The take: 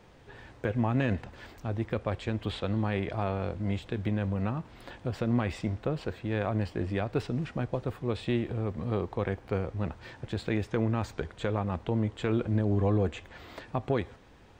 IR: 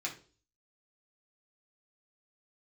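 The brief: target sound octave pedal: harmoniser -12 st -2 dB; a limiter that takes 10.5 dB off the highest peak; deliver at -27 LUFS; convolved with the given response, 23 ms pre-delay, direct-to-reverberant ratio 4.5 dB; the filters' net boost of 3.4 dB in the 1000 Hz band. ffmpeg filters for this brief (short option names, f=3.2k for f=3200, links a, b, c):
-filter_complex "[0:a]equalizer=f=1k:t=o:g=4.5,alimiter=limit=-22.5dB:level=0:latency=1,asplit=2[a][b];[1:a]atrim=start_sample=2205,adelay=23[c];[b][c]afir=irnorm=-1:irlink=0,volume=-7dB[d];[a][d]amix=inputs=2:normalize=0,asplit=2[e][f];[f]asetrate=22050,aresample=44100,atempo=2,volume=-2dB[g];[e][g]amix=inputs=2:normalize=0,volume=6dB"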